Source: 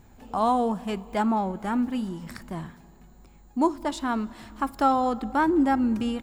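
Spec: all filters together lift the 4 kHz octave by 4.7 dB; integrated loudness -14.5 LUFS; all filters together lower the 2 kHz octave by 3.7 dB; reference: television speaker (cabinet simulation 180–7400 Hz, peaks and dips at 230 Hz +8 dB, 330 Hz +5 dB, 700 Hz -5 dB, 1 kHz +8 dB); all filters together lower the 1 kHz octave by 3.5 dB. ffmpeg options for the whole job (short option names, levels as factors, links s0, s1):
-af "highpass=f=180:w=0.5412,highpass=f=180:w=1.3066,equalizer=f=230:t=q:w=4:g=8,equalizer=f=330:t=q:w=4:g=5,equalizer=f=700:t=q:w=4:g=-5,equalizer=f=1000:t=q:w=4:g=8,lowpass=f=7400:w=0.5412,lowpass=f=7400:w=1.3066,equalizer=f=1000:t=o:g=-7,equalizer=f=2000:t=o:g=-4,equalizer=f=4000:t=o:g=8,volume=2.66"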